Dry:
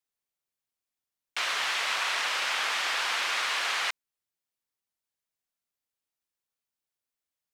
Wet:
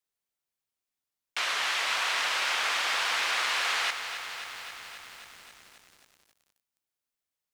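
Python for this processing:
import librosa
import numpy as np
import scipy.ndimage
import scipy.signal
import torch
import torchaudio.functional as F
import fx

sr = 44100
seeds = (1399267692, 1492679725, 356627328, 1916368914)

y = fx.echo_crushed(x, sr, ms=268, feedback_pct=80, bits=8, wet_db=-10)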